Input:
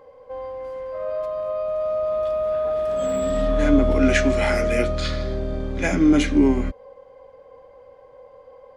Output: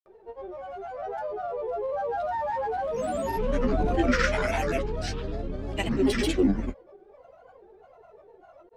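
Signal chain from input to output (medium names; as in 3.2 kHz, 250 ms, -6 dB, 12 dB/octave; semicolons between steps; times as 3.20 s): granulator, grains 20 per s, pitch spread up and down by 7 st; endings held to a fixed fall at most 380 dB/s; trim -5 dB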